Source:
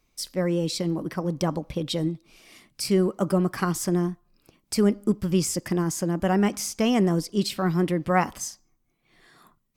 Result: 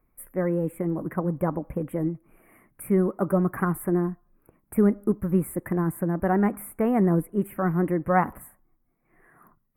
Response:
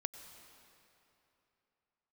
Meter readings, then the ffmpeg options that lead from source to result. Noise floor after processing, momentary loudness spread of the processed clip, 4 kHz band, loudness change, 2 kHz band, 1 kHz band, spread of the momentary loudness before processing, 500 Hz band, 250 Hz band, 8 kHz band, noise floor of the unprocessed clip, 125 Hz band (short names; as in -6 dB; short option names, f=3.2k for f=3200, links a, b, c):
-71 dBFS, 9 LU, under -30 dB, -0.5 dB, -1.5 dB, +0.5 dB, 8 LU, 0.0 dB, 0.0 dB, -12.5 dB, -71 dBFS, 0.0 dB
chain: -af "aphaser=in_gain=1:out_gain=1:delay=4.5:decay=0.21:speed=0.84:type=triangular,asuperstop=centerf=4800:order=8:qfactor=0.56"